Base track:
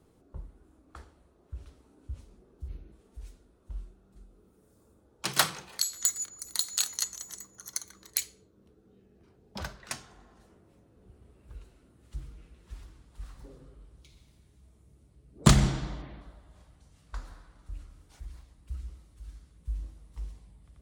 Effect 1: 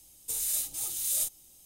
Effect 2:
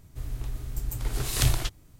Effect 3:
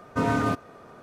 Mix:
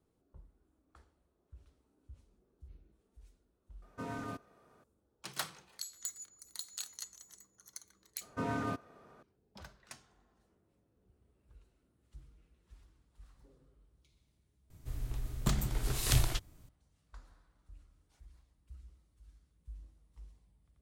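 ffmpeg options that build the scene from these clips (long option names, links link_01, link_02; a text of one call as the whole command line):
ffmpeg -i bed.wav -i cue0.wav -i cue1.wav -i cue2.wav -filter_complex "[3:a]asplit=2[link_01][link_02];[0:a]volume=-14dB[link_03];[link_01]highshelf=frequency=6200:gain=6.5,atrim=end=1.02,asetpts=PTS-STARTPTS,volume=-17.5dB,afade=type=in:duration=0.004:curve=hsin,afade=type=out:start_time=1.016:duration=0.004:curve=hsin,adelay=3820[link_04];[link_02]atrim=end=1.02,asetpts=PTS-STARTPTS,volume=-11.5dB,afade=type=in:duration=0.004:curve=hsin,afade=type=out:start_time=1.016:duration=0.004:curve=hsin,adelay=8210[link_05];[2:a]atrim=end=1.99,asetpts=PTS-STARTPTS,volume=-5dB,afade=type=in:duration=0.004:curve=hsin,afade=type=out:start_time=1.986:duration=0.004:curve=hsin,adelay=14700[link_06];[link_03][link_04][link_05][link_06]amix=inputs=4:normalize=0" out.wav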